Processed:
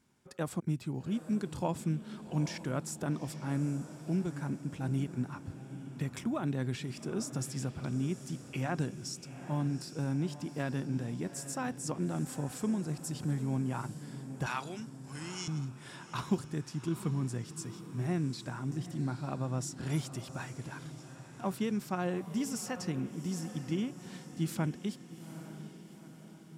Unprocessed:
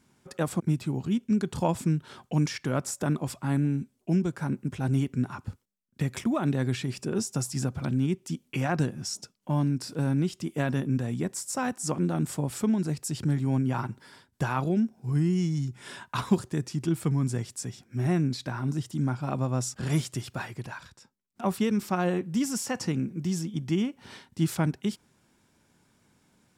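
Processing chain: 14.46–15.48 s: frequency weighting ITU-R 468; on a send: echo that smears into a reverb 824 ms, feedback 54%, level -12 dB; on the sum: trim -7 dB

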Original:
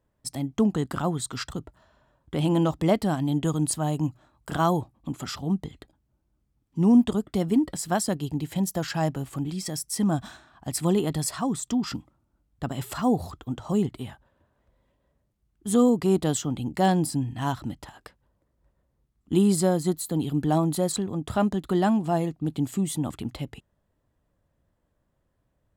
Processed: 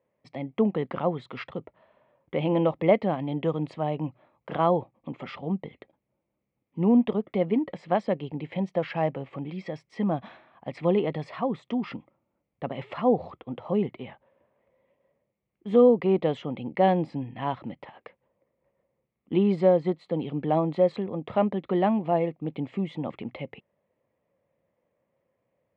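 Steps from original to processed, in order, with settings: cabinet simulation 190–2800 Hz, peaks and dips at 290 Hz -5 dB, 520 Hz +9 dB, 1.5 kHz -9 dB, 2.2 kHz +8 dB

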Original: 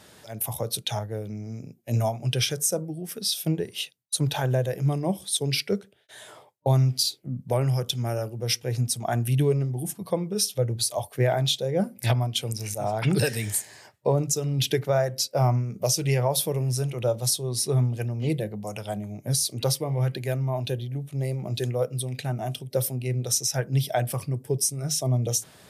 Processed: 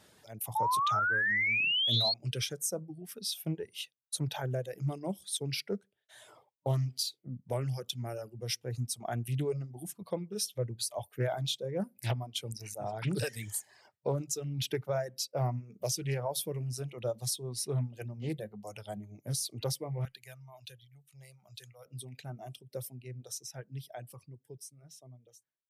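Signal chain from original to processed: fade out at the end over 5.53 s; reverb removal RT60 0.75 s; 0.55–2.14 s: painted sound rise 850–4400 Hz -20 dBFS; 20.05–21.86 s: amplifier tone stack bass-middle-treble 10-0-10; loudspeaker Doppler distortion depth 0.2 ms; trim -9 dB

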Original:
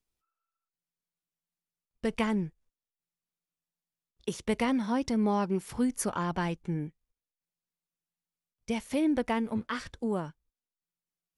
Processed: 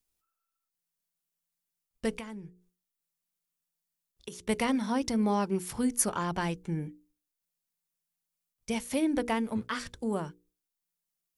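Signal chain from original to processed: treble shelf 6.3 kHz +10 dB; hum notches 60/120/180/240/300/360/420/480 Hz; 2.16–4.49 s: compression 6:1, threshold -40 dBFS, peak gain reduction 15 dB

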